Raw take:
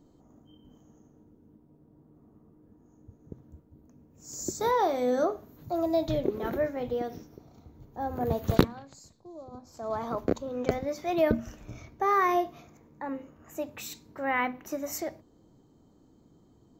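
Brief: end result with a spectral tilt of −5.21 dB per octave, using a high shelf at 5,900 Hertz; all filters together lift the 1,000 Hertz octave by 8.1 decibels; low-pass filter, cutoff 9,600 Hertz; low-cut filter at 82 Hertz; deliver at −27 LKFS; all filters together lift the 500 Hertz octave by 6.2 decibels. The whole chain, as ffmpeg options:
ffmpeg -i in.wav -af "highpass=82,lowpass=9600,equalizer=frequency=500:width_type=o:gain=5,equalizer=frequency=1000:width_type=o:gain=8.5,highshelf=frequency=5900:gain=6.5,volume=-3dB" out.wav

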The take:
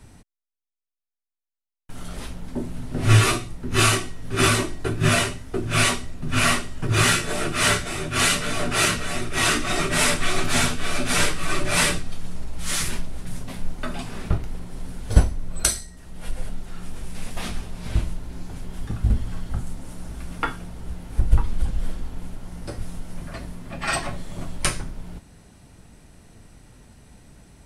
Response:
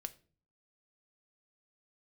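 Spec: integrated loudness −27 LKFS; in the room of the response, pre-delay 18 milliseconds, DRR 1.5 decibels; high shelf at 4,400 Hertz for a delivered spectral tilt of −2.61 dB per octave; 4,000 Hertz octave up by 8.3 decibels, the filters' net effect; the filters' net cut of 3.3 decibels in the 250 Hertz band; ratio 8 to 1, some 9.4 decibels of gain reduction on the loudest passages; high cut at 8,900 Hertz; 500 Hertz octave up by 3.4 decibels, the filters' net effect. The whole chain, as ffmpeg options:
-filter_complex "[0:a]lowpass=8900,equalizer=frequency=250:width_type=o:gain=-7.5,equalizer=frequency=500:width_type=o:gain=7,equalizer=frequency=4000:width_type=o:gain=8,highshelf=frequency=4400:gain=5,acompressor=threshold=-18dB:ratio=8,asplit=2[link_01][link_02];[1:a]atrim=start_sample=2205,adelay=18[link_03];[link_02][link_03]afir=irnorm=-1:irlink=0,volume=1.5dB[link_04];[link_01][link_04]amix=inputs=2:normalize=0,volume=-4.5dB"

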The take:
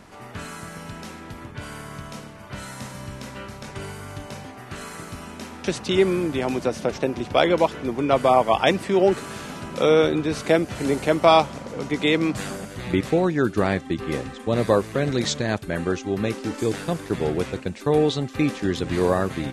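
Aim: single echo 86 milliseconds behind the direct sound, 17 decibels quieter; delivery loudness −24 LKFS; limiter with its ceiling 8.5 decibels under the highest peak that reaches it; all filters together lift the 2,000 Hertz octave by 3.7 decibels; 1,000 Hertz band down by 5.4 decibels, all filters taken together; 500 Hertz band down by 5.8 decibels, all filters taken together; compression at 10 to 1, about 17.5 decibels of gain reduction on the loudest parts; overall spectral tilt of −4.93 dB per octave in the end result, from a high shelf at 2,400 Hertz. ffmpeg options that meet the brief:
ffmpeg -i in.wav -af "equalizer=frequency=500:width_type=o:gain=-6,equalizer=frequency=1000:width_type=o:gain=-6.5,equalizer=frequency=2000:width_type=o:gain=8,highshelf=frequency=2400:gain=-3,acompressor=threshold=-33dB:ratio=10,alimiter=level_in=2.5dB:limit=-24dB:level=0:latency=1,volume=-2.5dB,aecho=1:1:86:0.141,volume=14.5dB" out.wav

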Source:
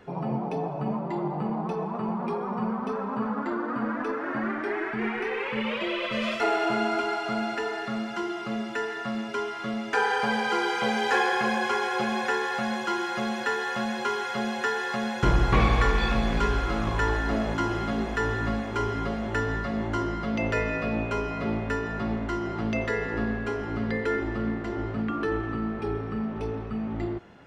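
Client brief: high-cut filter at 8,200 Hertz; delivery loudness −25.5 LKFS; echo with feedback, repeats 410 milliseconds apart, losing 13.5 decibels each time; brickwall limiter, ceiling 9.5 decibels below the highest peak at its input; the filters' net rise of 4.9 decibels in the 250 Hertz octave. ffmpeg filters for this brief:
ffmpeg -i in.wav -af "lowpass=8200,equalizer=frequency=250:width_type=o:gain=6,alimiter=limit=-16.5dB:level=0:latency=1,aecho=1:1:410|820:0.211|0.0444,volume=1.5dB" out.wav

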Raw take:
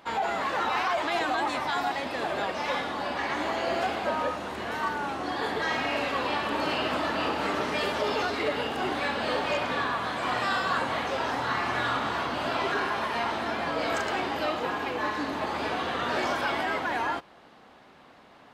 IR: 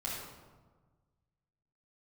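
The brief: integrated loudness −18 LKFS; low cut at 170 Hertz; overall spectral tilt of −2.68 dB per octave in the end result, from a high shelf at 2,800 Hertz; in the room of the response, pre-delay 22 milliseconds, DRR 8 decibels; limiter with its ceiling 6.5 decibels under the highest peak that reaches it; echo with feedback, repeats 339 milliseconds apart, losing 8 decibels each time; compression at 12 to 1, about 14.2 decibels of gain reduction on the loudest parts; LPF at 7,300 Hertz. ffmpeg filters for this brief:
-filter_complex "[0:a]highpass=170,lowpass=7300,highshelf=frequency=2800:gain=7.5,acompressor=threshold=-37dB:ratio=12,alimiter=level_in=8dB:limit=-24dB:level=0:latency=1,volume=-8dB,aecho=1:1:339|678|1017|1356|1695:0.398|0.159|0.0637|0.0255|0.0102,asplit=2[link_01][link_02];[1:a]atrim=start_sample=2205,adelay=22[link_03];[link_02][link_03]afir=irnorm=-1:irlink=0,volume=-11dB[link_04];[link_01][link_04]amix=inputs=2:normalize=0,volume=21.5dB"

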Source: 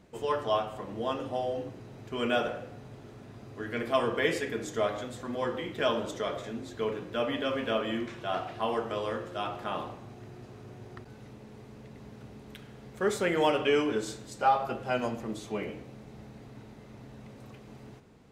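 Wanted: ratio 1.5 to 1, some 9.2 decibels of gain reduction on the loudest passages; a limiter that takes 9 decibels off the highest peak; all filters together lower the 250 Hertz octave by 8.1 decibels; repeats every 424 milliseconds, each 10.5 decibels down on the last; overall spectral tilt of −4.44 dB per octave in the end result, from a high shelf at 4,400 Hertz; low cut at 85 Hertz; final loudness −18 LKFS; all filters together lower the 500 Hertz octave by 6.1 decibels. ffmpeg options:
ffmpeg -i in.wav -af "highpass=85,equalizer=frequency=250:width_type=o:gain=-8.5,equalizer=frequency=500:width_type=o:gain=-5.5,highshelf=frequency=4400:gain=-3,acompressor=threshold=-48dB:ratio=1.5,alimiter=level_in=8.5dB:limit=-24dB:level=0:latency=1,volume=-8.5dB,aecho=1:1:424|848|1272:0.299|0.0896|0.0269,volume=27dB" out.wav

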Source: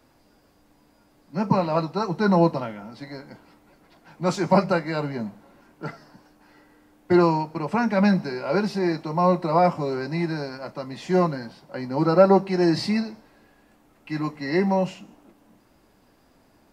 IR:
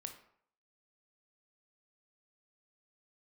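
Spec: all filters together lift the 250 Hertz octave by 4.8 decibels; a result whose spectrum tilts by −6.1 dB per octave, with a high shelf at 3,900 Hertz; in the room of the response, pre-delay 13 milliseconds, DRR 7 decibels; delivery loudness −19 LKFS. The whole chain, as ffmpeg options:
-filter_complex "[0:a]equalizer=frequency=250:width_type=o:gain=7.5,highshelf=frequency=3900:gain=-6,asplit=2[link_01][link_02];[1:a]atrim=start_sample=2205,adelay=13[link_03];[link_02][link_03]afir=irnorm=-1:irlink=0,volume=-3.5dB[link_04];[link_01][link_04]amix=inputs=2:normalize=0,volume=1dB"

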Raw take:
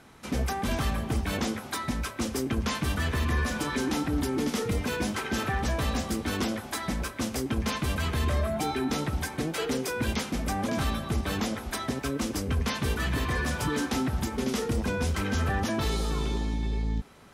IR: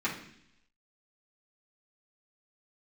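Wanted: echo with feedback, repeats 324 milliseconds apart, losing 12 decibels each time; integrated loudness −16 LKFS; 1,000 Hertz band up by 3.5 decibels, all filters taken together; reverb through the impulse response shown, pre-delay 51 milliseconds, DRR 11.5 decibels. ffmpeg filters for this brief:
-filter_complex "[0:a]equalizer=frequency=1000:width_type=o:gain=4.5,aecho=1:1:324|648|972:0.251|0.0628|0.0157,asplit=2[link_01][link_02];[1:a]atrim=start_sample=2205,adelay=51[link_03];[link_02][link_03]afir=irnorm=-1:irlink=0,volume=-19.5dB[link_04];[link_01][link_04]amix=inputs=2:normalize=0,volume=12.5dB"

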